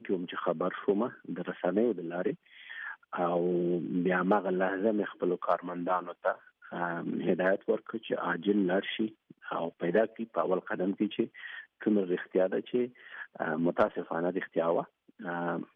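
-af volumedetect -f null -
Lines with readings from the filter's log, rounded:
mean_volume: -31.3 dB
max_volume: -13.9 dB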